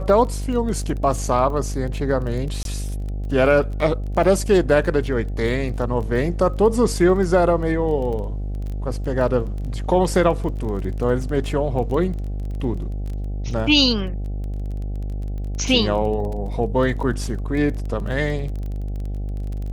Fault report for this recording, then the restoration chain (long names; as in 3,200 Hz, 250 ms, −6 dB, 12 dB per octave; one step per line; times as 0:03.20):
mains buzz 50 Hz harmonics 16 −26 dBFS
surface crackle 21 per second −29 dBFS
0:02.63–0:02.65: drop-out 22 ms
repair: click removal
hum removal 50 Hz, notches 16
repair the gap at 0:02.63, 22 ms